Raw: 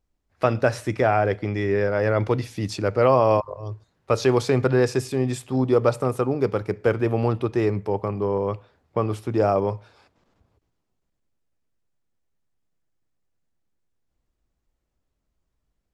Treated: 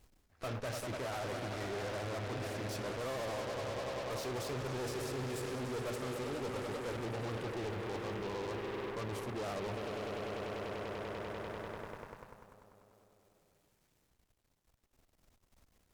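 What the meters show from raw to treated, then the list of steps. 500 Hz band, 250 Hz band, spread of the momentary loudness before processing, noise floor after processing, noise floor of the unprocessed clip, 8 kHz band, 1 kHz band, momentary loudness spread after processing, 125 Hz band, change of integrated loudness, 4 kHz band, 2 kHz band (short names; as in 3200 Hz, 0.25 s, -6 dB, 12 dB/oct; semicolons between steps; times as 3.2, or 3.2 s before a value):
-17.0 dB, -16.5 dB, 8 LU, -75 dBFS, -78 dBFS, -7.5 dB, -15.0 dB, 4 LU, -16.5 dB, -17.0 dB, -6.0 dB, -11.5 dB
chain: G.711 law mismatch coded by mu; flange 1.3 Hz, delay 7.2 ms, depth 4.8 ms, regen -63%; on a send: swelling echo 98 ms, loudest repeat 5, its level -13 dB; on the sum: soft clip -24 dBFS, distortion -9 dB; reverse; compressor 5:1, threshold -45 dBFS, peak gain reduction 16.5 dB; reverse; added harmonics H 8 -12 dB, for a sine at -37 dBFS; vibrato 14 Hz 53 cents; gain +4.5 dB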